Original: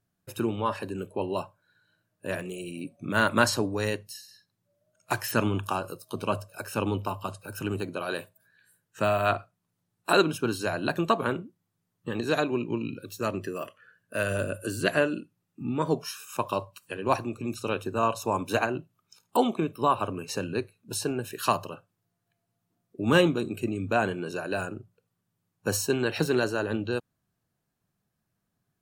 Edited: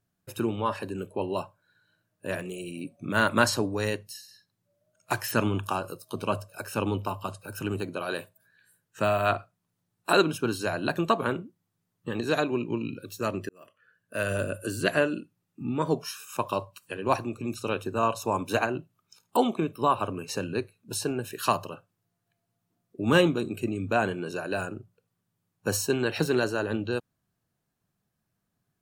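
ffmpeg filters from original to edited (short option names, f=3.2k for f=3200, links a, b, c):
-filter_complex "[0:a]asplit=2[a][b];[a]atrim=end=13.49,asetpts=PTS-STARTPTS,afade=t=out:st=13.486:d=0.004:c=hsin[c];[b]atrim=start=13.49,asetpts=PTS-STARTPTS,afade=t=in:d=0.81[d];[c][d]concat=n=2:v=0:a=1"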